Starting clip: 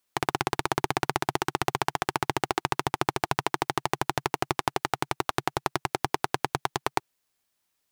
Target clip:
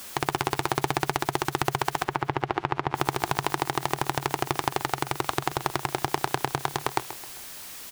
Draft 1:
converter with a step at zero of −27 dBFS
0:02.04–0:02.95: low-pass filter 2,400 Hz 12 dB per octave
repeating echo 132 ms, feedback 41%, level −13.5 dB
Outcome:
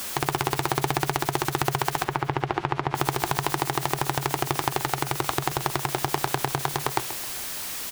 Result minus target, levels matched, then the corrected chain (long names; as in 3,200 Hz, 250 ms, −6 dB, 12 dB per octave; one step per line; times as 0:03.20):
converter with a step at zero: distortion +7 dB
converter with a step at zero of −35 dBFS
0:02.04–0:02.95: low-pass filter 2,400 Hz 12 dB per octave
repeating echo 132 ms, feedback 41%, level −13.5 dB